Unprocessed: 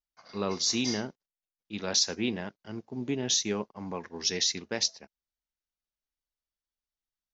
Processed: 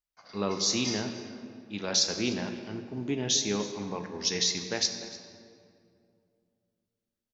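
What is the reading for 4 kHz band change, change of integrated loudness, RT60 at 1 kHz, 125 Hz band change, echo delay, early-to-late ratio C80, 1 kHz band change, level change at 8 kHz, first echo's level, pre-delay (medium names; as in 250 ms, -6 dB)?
+0.5 dB, +0.5 dB, 2.2 s, +2.0 dB, 299 ms, 8.5 dB, +1.0 dB, no reading, -18.5 dB, 3 ms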